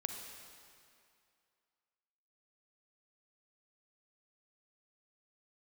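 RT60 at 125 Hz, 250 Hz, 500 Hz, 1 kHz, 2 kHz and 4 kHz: 2.2, 2.2, 2.4, 2.5, 2.3, 2.1 seconds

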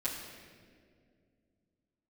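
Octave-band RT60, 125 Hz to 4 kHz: 3.1, 3.1, 2.6, 1.6, 1.7, 1.4 seconds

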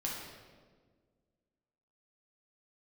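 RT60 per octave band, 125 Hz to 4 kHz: 2.0, 2.1, 1.9, 1.3, 1.2, 1.0 seconds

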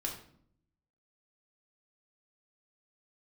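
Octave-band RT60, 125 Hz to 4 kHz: 1.1, 0.95, 0.65, 0.55, 0.50, 0.45 seconds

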